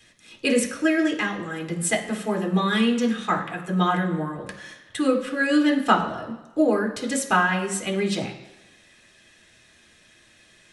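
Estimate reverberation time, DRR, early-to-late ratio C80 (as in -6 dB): 1.1 s, 0.0 dB, 11.5 dB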